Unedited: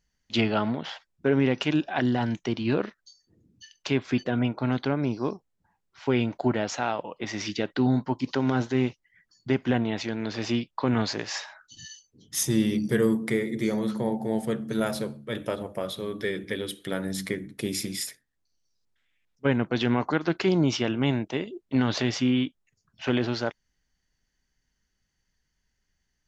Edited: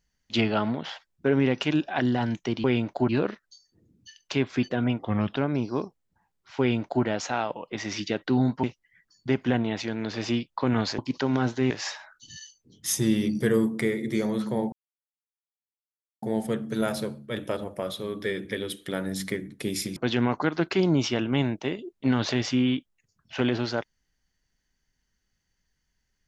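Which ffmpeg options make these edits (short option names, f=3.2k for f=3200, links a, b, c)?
-filter_complex "[0:a]asplit=10[a][b][c][d][e][f][g][h][i][j];[a]atrim=end=2.642[k];[b]atrim=start=6.078:end=6.532[l];[c]atrim=start=2.638:end=4.544[m];[d]atrim=start=4.54:end=4.85,asetpts=PTS-STARTPTS,asetrate=36603,aresample=44100,atrim=end_sample=16471,asetpts=PTS-STARTPTS[n];[e]atrim=start=4.846:end=8.122[o];[f]atrim=start=8.838:end=11.192[p];[g]atrim=start=8.118:end=8.842[q];[h]atrim=start=11.188:end=14.21,asetpts=PTS-STARTPTS,afade=t=out:st=3.018:d=0.004:c=hsin,apad=pad_dur=1.5[r];[i]atrim=start=14.21:end=17.952,asetpts=PTS-STARTPTS,afade=t=in:d=0.004:c=hsin[s];[j]atrim=start=19.648[t];[k][l]acrossfade=d=0.004:c1=hsin:c2=hsin[u];[u][m]acrossfade=d=0.004:c1=hsin:c2=hsin[v];[v][n]acrossfade=d=0.004:c1=hsin:c2=hsin[w];[w][o]acrossfade=d=0.004:c1=hsin:c2=hsin[x];[x][p]acrossfade=d=0.004:c1=hsin:c2=hsin[y];[y][q]acrossfade=d=0.004:c1=hsin:c2=hsin[z];[r][s]concat=n=2:v=0:a=1[aa];[z][aa]acrossfade=d=0.004:c1=hsin:c2=hsin[ab];[ab][t]acrossfade=d=0.004:c1=hsin:c2=hsin"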